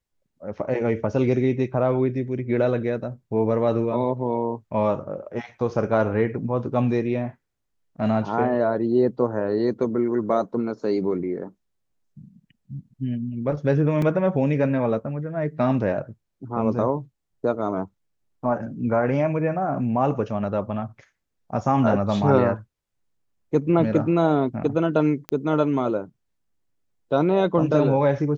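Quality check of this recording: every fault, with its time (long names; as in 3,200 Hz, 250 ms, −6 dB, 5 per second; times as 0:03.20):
0:14.02: drop-out 2.6 ms
0:25.29: click −14 dBFS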